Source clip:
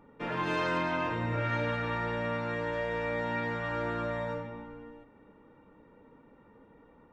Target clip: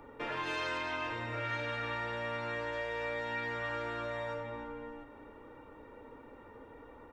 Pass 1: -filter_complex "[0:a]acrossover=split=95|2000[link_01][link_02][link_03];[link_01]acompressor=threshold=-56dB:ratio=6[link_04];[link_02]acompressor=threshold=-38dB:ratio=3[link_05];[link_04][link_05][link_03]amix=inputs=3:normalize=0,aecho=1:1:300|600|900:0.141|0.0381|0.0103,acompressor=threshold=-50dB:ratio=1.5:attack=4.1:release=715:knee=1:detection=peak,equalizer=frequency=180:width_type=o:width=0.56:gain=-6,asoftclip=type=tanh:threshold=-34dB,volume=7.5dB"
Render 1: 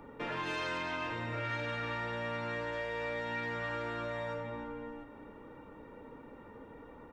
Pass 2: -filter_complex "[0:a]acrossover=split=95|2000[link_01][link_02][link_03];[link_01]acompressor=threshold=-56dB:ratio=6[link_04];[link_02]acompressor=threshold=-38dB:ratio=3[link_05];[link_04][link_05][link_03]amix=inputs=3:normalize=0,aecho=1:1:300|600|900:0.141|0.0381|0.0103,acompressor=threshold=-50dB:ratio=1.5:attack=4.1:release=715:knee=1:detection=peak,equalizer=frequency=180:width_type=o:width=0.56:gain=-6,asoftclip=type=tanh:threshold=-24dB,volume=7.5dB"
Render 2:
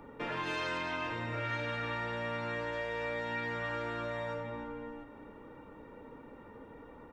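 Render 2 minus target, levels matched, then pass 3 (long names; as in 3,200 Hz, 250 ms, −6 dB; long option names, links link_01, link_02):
250 Hz band +2.5 dB
-filter_complex "[0:a]acrossover=split=95|2000[link_01][link_02][link_03];[link_01]acompressor=threshold=-56dB:ratio=6[link_04];[link_02]acompressor=threshold=-38dB:ratio=3[link_05];[link_04][link_05][link_03]amix=inputs=3:normalize=0,aecho=1:1:300|600|900:0.141|0.0381|0.0103,acompressor=threshold=-50dB:ratio=1.5:attack=4.1:release=715:knee=1:detection=peak,equalizer=frequency=180:width_type=o:width=0.56:gain=-17.5,asoftclip=type=tanh:threshold=-24dB,volume=7.5dB"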